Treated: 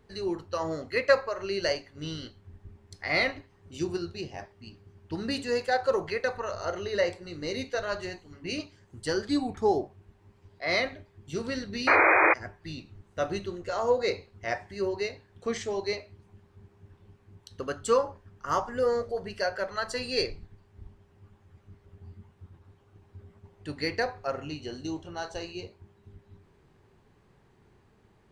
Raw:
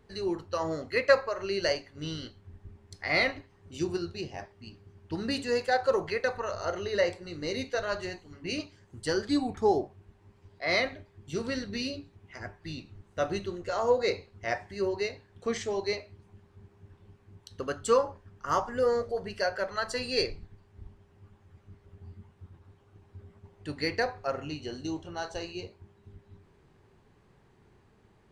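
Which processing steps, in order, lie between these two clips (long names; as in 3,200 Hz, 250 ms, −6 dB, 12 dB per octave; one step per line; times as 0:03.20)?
sound drawn into the spectrogram noise, 0:11.87–0:12.34, 310–2,500 Hz −20 dBFS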